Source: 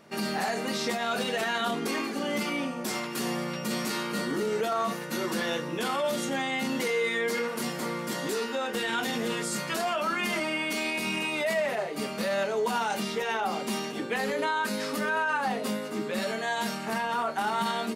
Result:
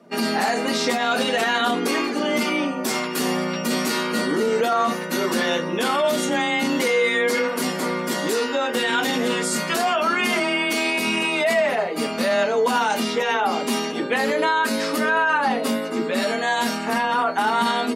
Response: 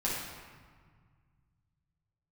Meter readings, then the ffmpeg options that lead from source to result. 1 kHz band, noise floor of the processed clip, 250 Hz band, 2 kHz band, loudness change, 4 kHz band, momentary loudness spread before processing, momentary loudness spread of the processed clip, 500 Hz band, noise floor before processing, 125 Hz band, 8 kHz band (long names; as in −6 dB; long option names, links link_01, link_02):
+8.0 dB, −28 dBFS, +8.0 dB, +8.0 dB, +8.0 dB, +8.0 dB, 4 LU, 4 LU, +8.0 dB, −35 dBFS, +4.0 dB, +7.0 dB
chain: -af "highpass=66,afftdn=noise_reduction=13:noise_floor=-51,afreqshift=19,volume=8dB"